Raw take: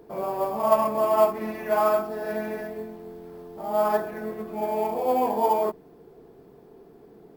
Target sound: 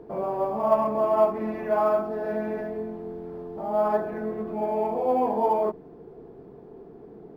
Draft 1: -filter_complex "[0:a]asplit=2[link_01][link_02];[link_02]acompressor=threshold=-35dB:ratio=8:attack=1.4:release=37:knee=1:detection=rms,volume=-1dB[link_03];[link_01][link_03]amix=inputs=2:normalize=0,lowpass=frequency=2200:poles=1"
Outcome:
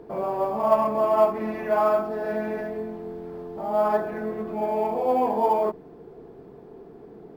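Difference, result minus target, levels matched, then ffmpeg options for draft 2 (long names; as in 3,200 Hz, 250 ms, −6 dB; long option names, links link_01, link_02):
2,000 Hz band +2.5 dB
-filter_complex "[0:a]asplit=2[link_01][link_02];[link_02]acompressor=threshold=-35dB:ratio=8:attack=1.4:release=37:knee=1:detection=rms,volume=-1dB[link_03];[link_01][link_03]amix=inputs=2:normalize=0,lowpass=frequency=980:poles=1"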